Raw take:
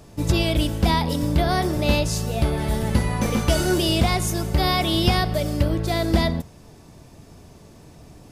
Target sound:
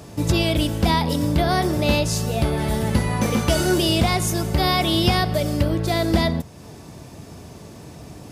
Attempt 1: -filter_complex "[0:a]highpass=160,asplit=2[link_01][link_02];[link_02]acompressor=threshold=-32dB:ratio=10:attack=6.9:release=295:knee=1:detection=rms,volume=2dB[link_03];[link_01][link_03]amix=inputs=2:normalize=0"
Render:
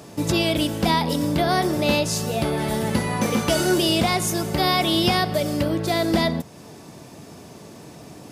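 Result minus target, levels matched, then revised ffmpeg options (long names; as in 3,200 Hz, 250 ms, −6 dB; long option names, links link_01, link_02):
125 Hz band −4.0 dB
-filter_complex "[0:a]highpass=67,asplit=2[link_01][link_02];[link_02]acompressor=threshold=-32dB:ratio=10:attack=6.9:release=295:knee=1:detection=rms,volume=2dB[link_03];[link_01][link_03]amix=inputs=2:normalize=0"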